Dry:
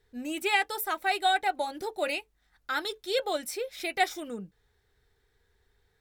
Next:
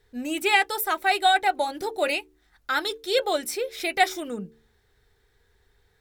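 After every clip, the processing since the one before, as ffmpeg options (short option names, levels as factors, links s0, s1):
-af "bandreject=f=75.05:t=h:w=4,bandreject=f=150.1:t=h:w=4,bandreject=f=225.15:t=h:w=4,bandreject=f=300.2:t=h:w=4,bandreject=f=375.25:t=h:w=4,bandreject=f=450.3:t=h:w=4,volume=1.88"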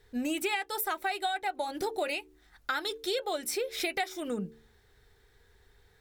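-af "acompressor=threshold=0.0316:ratio=16,volume=1.26"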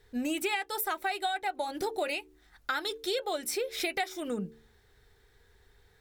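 -af anull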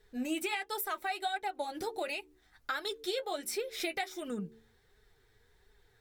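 -af "flanger=delay=4.6:depth=4.8:regen=32:speed=1.4:shape=sinusoidal"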